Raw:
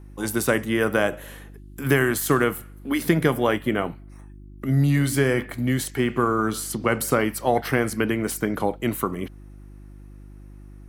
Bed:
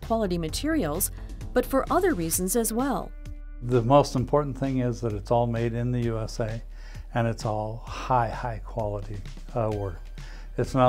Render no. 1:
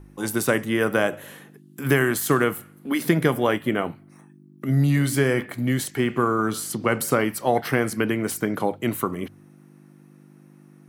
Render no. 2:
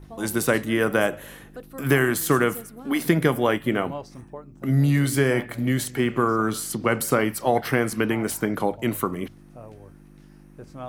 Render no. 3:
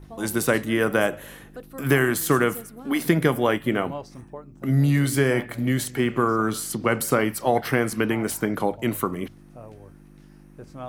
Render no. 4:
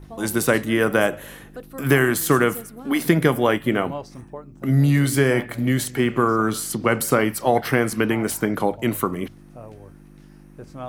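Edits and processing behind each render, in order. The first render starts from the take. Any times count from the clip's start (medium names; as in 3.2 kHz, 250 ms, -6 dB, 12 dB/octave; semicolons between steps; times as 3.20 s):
de-hum 50 Hz, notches 2
add bed -16.5 dB
no audible change
trim +2.5 dB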